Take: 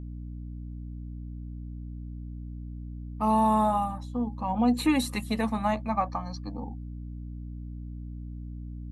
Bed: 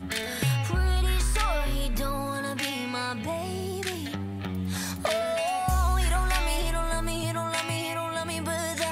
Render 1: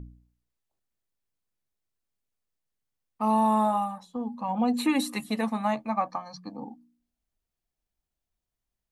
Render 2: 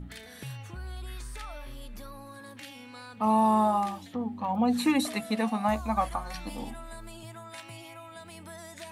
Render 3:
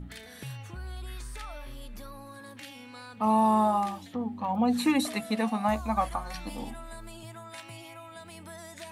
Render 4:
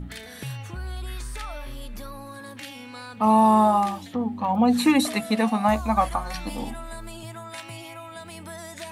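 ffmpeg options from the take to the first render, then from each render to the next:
-af "bandreject=f=60:t=h:w=4,bandreject=f=120:t=h:w=4,bandreject=f=180:t=h:w=4,bandreject=f=240:t=h:w=4,bandreject=f=300:t=h:w=4"
-filter_complex "[1:a]volume=0.178[s0];[0:a][s0]amix=inputs=2:normalize=0"
-af anull
-af "volume=2"

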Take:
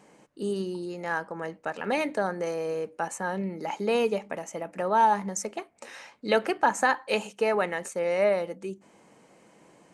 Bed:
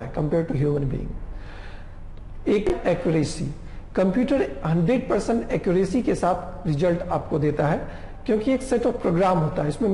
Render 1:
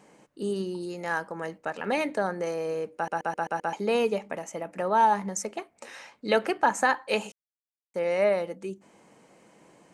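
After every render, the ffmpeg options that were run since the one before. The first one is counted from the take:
-filter_complex "[0:a]asettb=1/sr,asplit=3[s0][s1][s2];[s0]atrim=end=0.804[s3];[s1]atrim=start=0.8:end=1.58,asetpts=PTS-STARTPTS,afade=t=in:d=0.004:c=qsin,afade=t=out:st=0.776:d=0.004:c=qsin,highshelf=f=4700:g=6.5[s4];[s2]atrim=start=1.576[s5];[s3][s4]acrossfade=d=0.004:c1=hsin:c2=qsin[s6];[s6][s5]acrossfade=d=0.004:c1=qsin:c2=hsin,asplit=9[s7][s8][s9][s10][s11][s12][s13][s14][s15];[s7]atrim=end=3.082[s16];[s8]atrim=start=2.948:end=3.082[s17];[s9]atrim=start=2.948:end=3.082[s18];[s10]atrim=start=2.948:end=3.082[s19];[s11]atrim=start=2.948:end=3.082[s20];[s12]atrim=start=2.948:end=3.082[s21];[s13]atrim=start=3.728:end=7.32,asetpts=PTS-STARTPTS,afade=t=out:st=3.588:d=0.004:c=hsin[s22];[s14]atrim=start=7.32:end=7.94,asetpts=PTS-STARTPTS,volume=0[s23];[s15]atrim=start=7.94,asetpts=PTS-STARTPTS,afade=t=in:d=0.004:c=hsin[s24];[s16][s17]acrossfade=d=0.004:c1=hsin:c2=hsin[s25];[s25][s18]acrossfade=d=0.004:c1=hsin:c2=hsin[s26];[s26][s19]acrossfade=d=0.004:c1=hsin:c2=hsin[s27];[s27][s20]acrossfade=d=0.004:c1=hsin:c2=hsin[s28];[s28][s21]acrossfade=d=0.004:c1=hsin:c2=hsin[s29];[s22][s23][s24]concat=n=3:v=0:a=1[s30];[s29][s30]acrossfade=d=0.004:c1=hsin:c2=hsin"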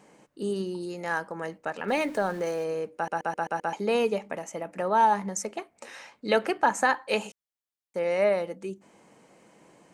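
-filter_complex "[0:a]asettb=1/sr,asplit=3[s0][s1][s2];[s0]atrim=end=1.884[s3];[s1]atrim=start=1.88:end=2.64,asetpts=PTS-STARTPTS,afade=t=in:d=0.004:c=qsin,afade=t=out:st=0.756:d=0.004:c=qsin,aeval=exprs='val(0)+0.5*0.00794*sgn(val(0))':c=same[s4];[s2]atrim=start=2.636[s5];[s3][s4]acrossfade=d=0.004:c1=hsin:c2=qsin[s6];[s6][s5]acrossfade=d=0.004:c1=qsin:c2=hsin"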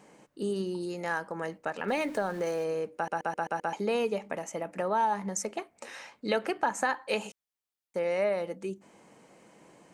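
-af "acompressor=threshold=0.0398:ratio=2"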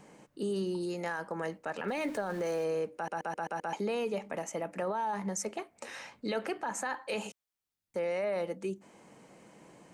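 -filter_complex "[0:a]acrossover=split=220[s0][s1];[s0]acompressor=mode=upward:threshold=0.00141:ratio=2.5[s2];[s2][s1]amix=inputs=2:normalize=0,alimiter=level_in=1.19:limit=0.0631:level=0:latency=1:release=14,volume=0.841"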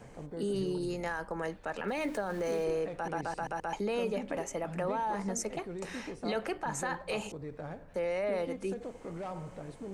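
-filter_complex "[1:a]volume=0.0944[s0];[0:a][s0]amix=inputs=2:normalize=0"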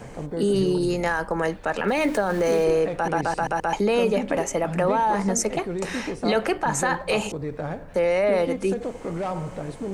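-af "volume=3.76"

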